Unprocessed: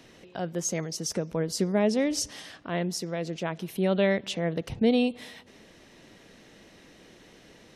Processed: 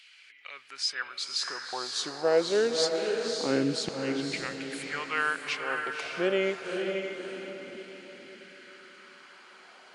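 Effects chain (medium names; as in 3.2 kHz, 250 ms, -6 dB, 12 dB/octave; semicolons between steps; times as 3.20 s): LFO high-pass saw down 0.33 Hz 280–3500 Hz; tape speed -22%; echo that smears into a reverb 564 ms, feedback 44%, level -4 dB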